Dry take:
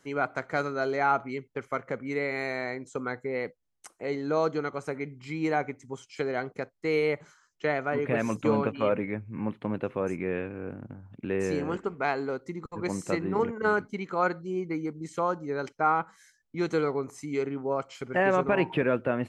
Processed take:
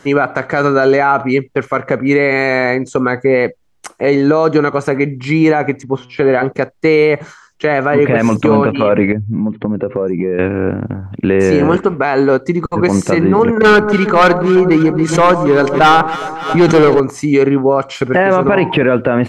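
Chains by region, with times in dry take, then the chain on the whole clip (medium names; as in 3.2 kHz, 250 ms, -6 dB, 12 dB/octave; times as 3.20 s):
5.83–6.44 s: distance through air 240 m + de-hum 124 Hz, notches 28
9.12–10.39 s: spectral contrast enhancement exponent 1.6 + compression 5:1, threshold -34 dBFS
13.57–17.00 s: hard clipper -25.5 dBFS + echo whose repeats swap between lows and highs 138 ms, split 1.1 kHz, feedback 72%, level -10 dB + swell ahead of each attack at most 96 dB/s
whole clip: treble shelf 6.5 kHz -10.5 dB; loudness maximiser +22.5 dB; trim -1 dB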